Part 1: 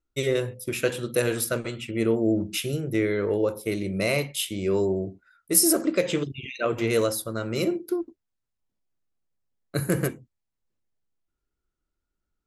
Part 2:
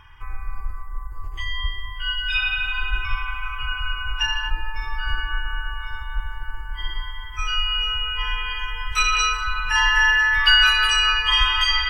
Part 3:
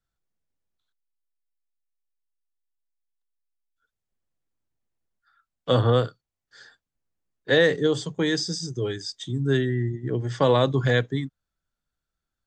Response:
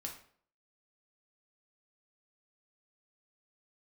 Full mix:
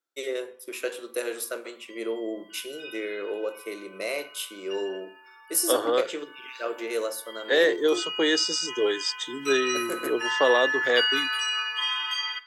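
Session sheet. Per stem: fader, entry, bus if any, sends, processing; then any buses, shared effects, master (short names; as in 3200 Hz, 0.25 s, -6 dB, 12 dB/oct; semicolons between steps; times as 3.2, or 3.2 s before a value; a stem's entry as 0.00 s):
-8.0 dB, 0.00 s, send -4.5 dB, dry
6.09 s -23 dB -> 6.49 s -13.5 dB, 0.50 s, send -4.5 dB, high shelf 5600 Hz +6.5 dB
+1.5 dB, 0.00 s, no send, vocal rider within 4 dB 0.5 s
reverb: on, RT60 0.55 s, pre-delay 3 ms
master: HPF 340 Hz 24 dB/oct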